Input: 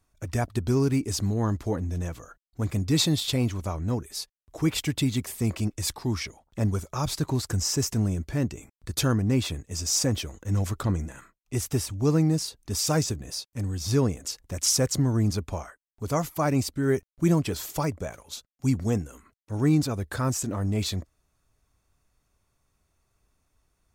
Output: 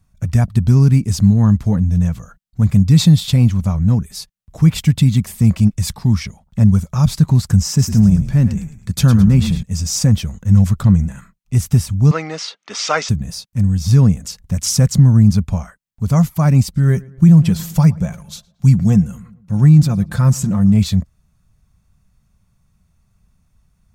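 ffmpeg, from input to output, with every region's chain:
-filter_complex "[0:a]asettb=1/sr,asplit=3[s0][s1][s2];[s0]atrim=end=7.684[s3];[s1]atrim=start=7.68:end=9.63,asetpts=PTS-STARTPTS,afade=t=in:d=0.004:c=qsin,afade=t=out:st=1.946:d=0.004:c=qsin,highpass=91,asplit=5[s4][s5][s6][s7][s8];[s5]adelay=107,afreqshift=-45,volume=0.299[s9];[s6]adelay=214,afreqshift=-90,volume=0.114[s10];[s7]adelay=321,afreqshift=-135,volume=0.0432[s11];[s8]adelay=428,afreqshift=-180,volume=0.0164[s12];[s4][s9][s10][s11][s12]amix=inputs=5:normalize=0,atrim=end_sample=85995[s13];[s2]atrim=start=9.626[s14];[s3][s13]acrossfade=d=0.004:c1=hsin:c2=qsin[s15];[s15][s14]acrossfade=d=0.004:c1=qsin:c2=hsin,asettb=1/sr,asplit=3[s16][s17][s18];[s16]atrim=end=12.114[s19];[s17]atrim=start=12.11:end=13.09,asetpts=PTS-STARTPTS,afade=t=in:d=0.004:c=qsin,afade=t=out:st=0.976:d=0.004:c=qsin,acontrast=71,highpass=f=420:w=0.5412,highpass=f=420:w=1.3066,equalizer=f=1300:t=q:w=4:g=8,equalizer=f=2100:t=q:w=4:g=8,equalizer=f=3100:t=q:w=4:g=6,equalizer=f=4800:t=q:w=4:g=-4,lowpass=f=5400:w=0.5412,lowpass=f=5400:w=1.3066[s20];[s18]atrim=start=13.086[s21];[s19][s20]acrossfade=d=0.004:c1=hsin:c2=qsin[s22];[s22][s21]acrossfade=d=0.004:c1=qsin:c2=hsin,asettb=1/sr,asplit=3[s23][s24][s25];[s23]atrim=end=16.634[s26];[s24]atrim=start=16.63:end=20.74,asetpts=PTS-STARTPTS,afade=t=in:d=0.004:c=qsin,afade=t=out:st=4.106:d=0.004:c=qsin,aecho=1:1:5.7:0.39,atrim=end_sample=181251,asplit=2[s27][s28];[s28]adelay=114,lowpass=f=2300:p=1,volume=0.0841,asplit=2[s29][s30];[s30]adelay=114,lowpass=f=2300:p=1,volume=0.52,asplit=2[s31][s32];[s32]adelay=114,lowpass=f=2300:p=1,volume=0.52,asplit=2[s33][s34];[s34]adelay=114,lowpass=f=2300:p=1,volume=0.52[s35];[s27][s29][s31][s33][s35]amix=inputs=5:normalize=0,atrim=end_sample=181251[s36];[s25]atrim=start=20.736[s37];[s26][s36]acrossfade=d=0.004:c1=hsin:c2=qsin[s38];[s38][s37]acrossfade=d=0.004:c1=qsin:c2=hsin,lowshelf=f=250:t=q:w=3:g=9,alimiter=level_in=1.78:limit=0.891:release=50:level=0:latency=1,volume=0.891"

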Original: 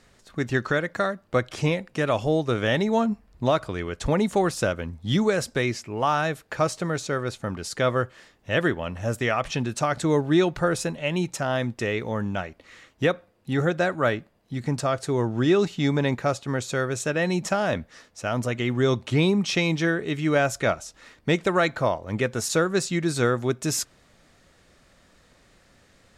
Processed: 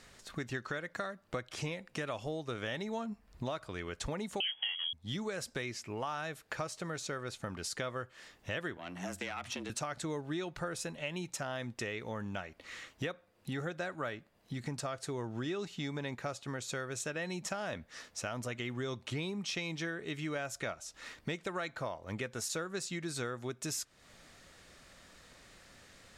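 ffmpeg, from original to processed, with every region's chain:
-filter_complex "[0:a]asettb=1/sr,asplit=3[s0][s1][s2];[s0]atrim=end=4.404[s3];[s1]atrim=start=4.4:end=4.93,asetpts=PTS-STARTPTS,afade=t=in:d=0.004:c=qsin,afade=t=out:st=0.526:d=0.004:c=qsin,lowshelf=f=420:g=9.5,asplit=2[s4][s5];[s5]adelay=25,volume=0.708[s6];[s4][s6]amix=inputs=2:normalize=0,atrim=end_sample=23373,lowpass=f=2900:t=q:w=0.5098,lowpass=f=2900:t=q:w=0.6013,lowpass=f=2900:t=q:w=0.9,lowpass=f=2900:t=q:w=2.563,afreqshift=-3400[s7];[s2]atrim=start=4.926[s8];[s3][s7]acrossfade=d=0.004:c1=hsin:c2=qsin[s9];[s9][s8]acrossfade=d=0.004:c1=qsin:c2=hsin,asettb=1/sr,asplit=3[s10][s11][s12];[s10]atrim=end=8.774[s13];[s11]atrim=start=8.77:end=9.7,asetpts=PTS-STARTPTS,afade=t=in:d=0.004:c=qsin,afade=t=out:st=0.926:d=0.004:c=qsin,acrossover=split=1300|7800[s14][s15][s16];[s14]acompressor=threshold=0.0447:ratio=4[s17];[s15]acompressor=threshold=0.0316:ratio=4[s18];[s16]acompressor=threshold=0.00355:ratio=4[s19];[s17][s18][s19]amix=inputs=3:normalize=0,aeval=exprs='(tanh(10*val(0)+0.6)-tanh(0.6))/10':c=same,afreqshift=88[s20];[s12]atrim=start=9.696[s21];[s13][s20]acrossfade=d=0.004:c1=hsin:c2=qsin[s22];[s22][s21]acrossfade=d=0.004:c1=qsin:c2=hsin,tiltshelf=f=970:g=-3,acompressor=threshold=0.0126:ratio=4"

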